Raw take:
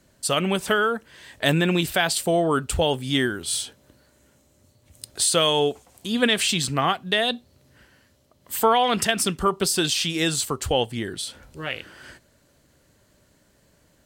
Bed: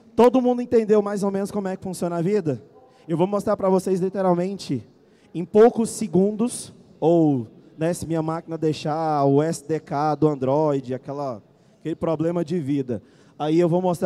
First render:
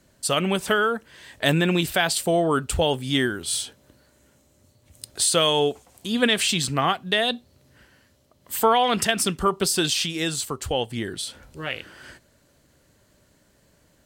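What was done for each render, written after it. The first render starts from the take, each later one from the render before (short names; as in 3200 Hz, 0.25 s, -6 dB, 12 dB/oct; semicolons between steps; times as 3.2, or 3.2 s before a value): 10.06–10.9 gain -3 dB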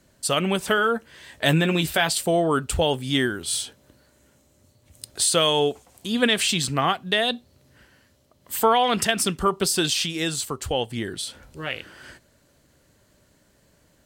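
0.76–2.1 doubler 13 ms -9 dB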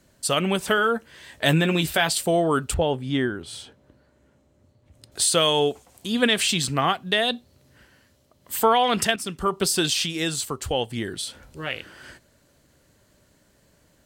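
2.74–5.12 LPF 1400 Hz 6 dB/oct; 9.16–9.61 fade in, from -12.5 dB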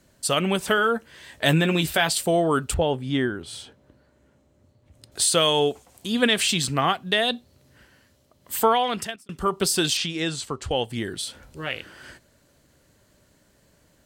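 8.64–9.29 fade out; 9.97–10.71 air absorption 66 m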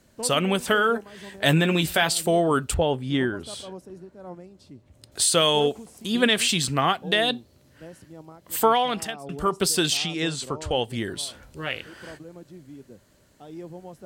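add bed -20.5 dB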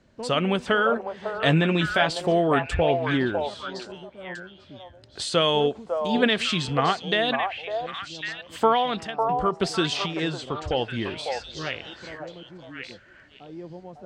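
air absorption 140 m; on a send: delay with a stepping band-pass 0.552 s, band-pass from 730 Hz, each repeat 1.4 oct, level -1.5 dB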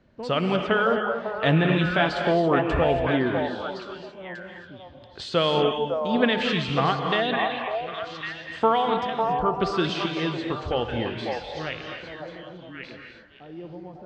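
air absorption 160 m; non-linear reverb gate 0.3 s rising, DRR 4.5 dB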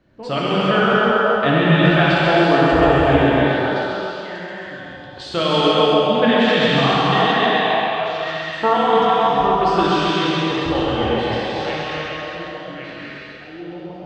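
thinning echo 0.133 s, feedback 60%, high-pass 190 Hz, level -6 dB; non-linear reverb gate 0.45 s flat, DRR -6 dB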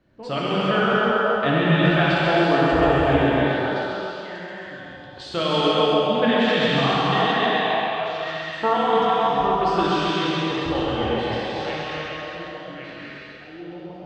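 gain -4 dB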